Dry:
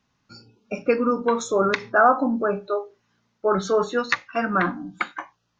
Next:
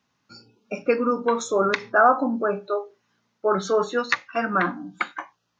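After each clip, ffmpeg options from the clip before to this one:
-af "highpass=f=180:p=1"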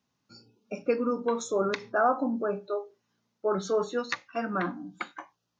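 -af "equalizer=f=1700:t=o:w=2.1:g=-6.5,volume=0.631"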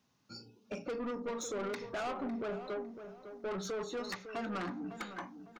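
-filter_complex "[0:a]acompressor=threshold=0.0126:ratio=2,asoftclip=type=tanh:threshold=0.0126,asplit=2[s0][s1];[s1]adelay=554,lowpass=f=1900:p=1,volume=0.316,asplit=2[s2][s3];[s3]adelay=554,lowpass=f=1900:p=1,volume=0.34,asplit=2[s4][s5];[s5]adelay=554,lowpass=f=1900:p=1,volume=0.34,asplit=2[s6][s7];[s7]adelay=554,lowpass=f=1900:p=1,volume=0.34[s8];[s0][s2][s4][s6][s8]amix=inputs=5:normalize=0,volume=1.5"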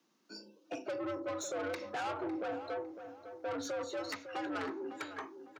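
-af "afreqshift=91"

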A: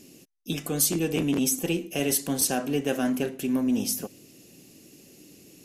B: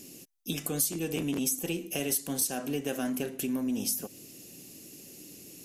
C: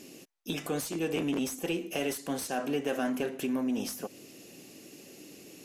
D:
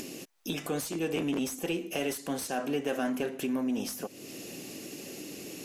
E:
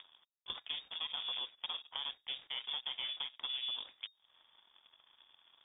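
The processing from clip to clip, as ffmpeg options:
-af "highshelf=f=6200:g=8.5,acompressor=threshold=0.0282:ratio=2.5"
-filter_complex "[0:a]asplit=2[s0][s1];[s1]highpass=f=720:p=1,volume=6.31,asoftclip=type=tanh:threshold=0.211[s2];[s0][s2]amix=inputs=2:normalize=0,lowpass=f=1400:p=1,volume=0.501,volume=0.841"
-af "acompressor=mode=upward:threshold=0.0224:ratio=2.5"
-filter_complex "[0:a]aeval=exprs='0.112*(cos(1*acos(clip(val(0)/0.112,-1,1)))-cos(1*PI/2))+0.0158*(cos(7*acos(clip(val(0)/0.112,-1,1)))-cos(7*PI/2))':c=same,lowpass=f=3100:t=q:w=0.5098,lowpass=f=3100:t=q:w=0.6013,lowpass=f=3100:t=q:w=0.9,lowpass=f=3100:t=q:w=2.563,afreqshift=-3700,acrossover=split=880|2900[s0][s1][s2];[s0]acompressor=threshold=0.00355:ratio=4[s3];[s1]acompressor=threshold=0.00501:ratio=4[s4];[s2]acompressor=threshold=0.0178:ratio=4[s5];[s3][s4][s5]amix=inputs=3:normalize=0,volume=0.631"

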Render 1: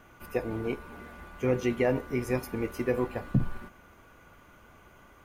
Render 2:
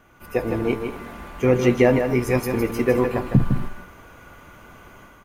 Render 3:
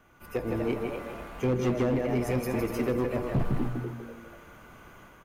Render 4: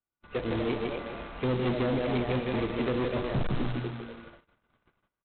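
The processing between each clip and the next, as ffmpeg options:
-filter_complex "[0:a]dynaudnorm=f=210:g=3:m=2.82,asplit=2[s0][s1];[s1]aecho=0:1:158|235:0.473|0.133[s2];[s0][s2]amix=inputs=2:normalize=0"
-filter_complex "[0:a]asplit=5[s0][s1][s2][s3][s4];[s1]adelay=245,afreqshift=110,volume=0.355[s5];[s2]adelay=490,afreqshift=220,volume=0.117[s6];[s3]adelay=735,afreqshift=330,volume=0.0385[s7];[s4]adelay=980,afreqshift=440,volume=0.0127[s8];[s0][s5][s6][s7][s8]amix=inputs=5:normalize=0,acrossover=split=420[s9][s10];[s10]acompressor=threshold=0.0501:ratio=6[s11];[s9][s11]amix=inputs=2:normalize=0,volume=6.31,asoftclip=hard,volume=0.158,volume=0.531"
-af "agate=range=0.0141:threshold=0.00501:ratio=16:detection=peak,aresample=8000,acrusher=bits=2:mode=log:mix=0:aa=0.000001,aresample=44100"

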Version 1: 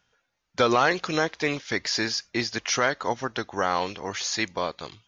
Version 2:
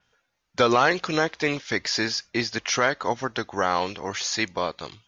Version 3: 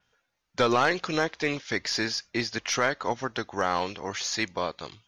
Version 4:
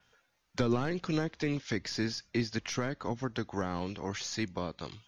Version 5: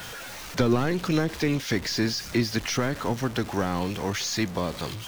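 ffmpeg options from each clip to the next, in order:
-af "adynamicequalizer=threshold=0.01:dfrequency=5700:dqfactor=0.7:tfrequency=5700:tqfactor=0.7:attack=5:release=100:ratio=0.375:range=2:mode=cutabove:tftype=highshelf,volume=1.19"
-af "aeval=exprs='0.422*(cos(1*acos(clip(val(0)/0.422,-1,1)))-cos(1*PI/2))+0.0841*(cos(2*acos(clip(val(0)/0.422,-1,1)))-cos(2*PI/2))+0.0075*(cos(4*acos(clip(val(0)/0.422,-1,1)))-cos(4*PI/2))+0.0266*(cos(5*acos(clip(val(0)/0.422,-1,1)))-cos(5*PI/2))+0.00596*(cos(7*acos(clip(val(0)/0.422,-1,1)))-cos(7*PI/2))':c=same,volume=0.596"
-filter_complex "[0:a]acrossover=split=300[s0][s1];[s1]acompressor=threshold=0.00794:ratio=4[s2];[s0][s2]amix=inputs=2:normalize=0,volume=1.5"
-af "aeval=exprs='val(0)+0.5*0.0112*sgn(val(0))':c=same,volume=2"

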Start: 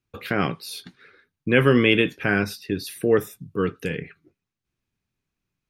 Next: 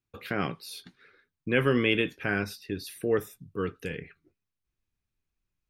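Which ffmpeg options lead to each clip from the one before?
-af "asubboost=boost=4:cutoff=70,volume=0.473"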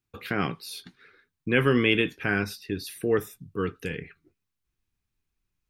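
-af "equalizer=f=580:w=3.6:g=-5,volume=1.41"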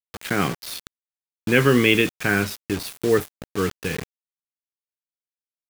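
-af "acrusher=bits=5:mix=0:aa=0.000001,volume=1.78"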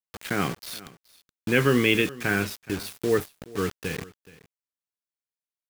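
-af "aecho=1:1:423:0.1,volume=0.631"

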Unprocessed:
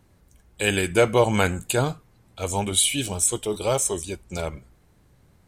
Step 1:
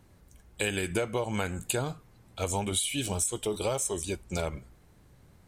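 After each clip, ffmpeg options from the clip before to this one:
-af "acompressor=threshold=0.0501:ratio=12"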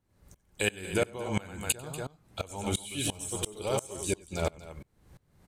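-filter_complex "[0:a]asplit=2[s0][s1];[s1]aecho=0:1:93.29|239.1:0.447|0.398[s2];[s0][s2]amix=inputs=2:normalize=0,aeval=exprs='val(0)*pow(10,-25*if(lt(mod(-2.9*n/s,1),2*abs(-2.9)/1000),1-mod(-2.9*n/s,1)/(2*abs(-2.9)/1000),(mod(-2.9*n/s,1)-2*abs(-2.9)/1000)/(1-2*abs(-2.9)/1000))/20)':c=same,volume=1.68"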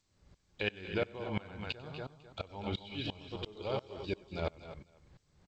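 -af "aecho=1:1:259:0.2,aresample=11025,aresample=44100,volume=0.531" -ar 16000 -c:a g722

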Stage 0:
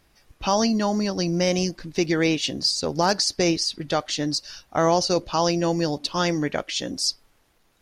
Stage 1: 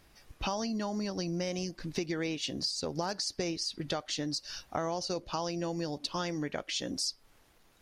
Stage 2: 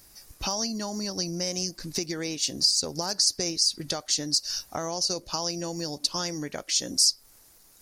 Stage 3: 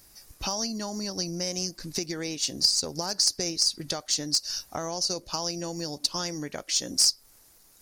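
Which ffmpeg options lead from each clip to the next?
-af "acompressor=threshold=0.0251:ratio=5"
-af "aexciter=amount=6.5:drive=1.5:freq=4500,volume=1.12"
-af "aeval=exprs='0.376*(cos(1*acos(clip(val(0)/0.376,-1,1)))-cos(1*PI/2))+0.0422*(cos(2*acos(clip(val(0)/0.376,-1,1)))-cos(2*PI/2))+0.0335*(cos(3*acos(clip(val(0)/0.376,-1,1)))-cos(3*PI/2))+0.0119*(cos(4*acos(clip(val(0)/0.376,-1,1)))-cos(4*PI/2))+0.00237*(cos(8*acos(clip(val(0)/0.376,-1,1)))-cos(8*PI/2))':c=same,volume=1.19"

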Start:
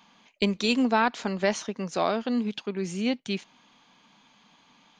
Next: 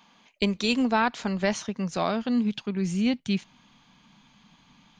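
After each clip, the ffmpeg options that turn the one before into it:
-af "asubboost=boost=6.5:cutoff=170"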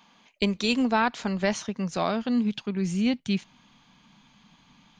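-af anull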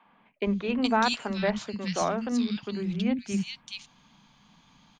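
-filter_complex "[0:a]acrossover=split=250|2400[s0][s1][s2];[s0]adelay=50[s3];[s2]adelay=420[s4];[s3][s1][s4]amix=inputs=3:normalize=0"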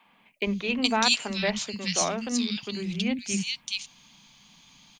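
-af "aexciter=amount=3.7:drive=3.3:freq=2100,volume=0.841"

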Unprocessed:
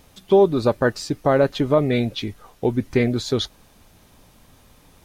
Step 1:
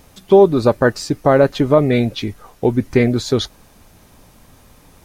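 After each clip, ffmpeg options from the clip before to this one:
-af "equalizer=f=3400:t=o:w=0.77:g=-3.5,volume=1.78"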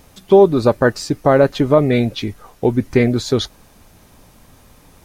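-af anull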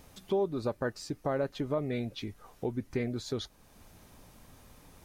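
-af "acompressor=threshold=0.01:ratio=1.5,volume=0.398"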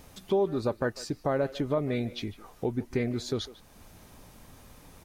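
-filter_complex "[0:a]asplit=2[s0][s1];[s1]adelay=150,highpass=300,lowpass=3400,asoftclip=type=hard:threshold=0.0376,volume=0.178[s2];[s0][s2]amix=inputs=2:normalize=0,volume=1.5"

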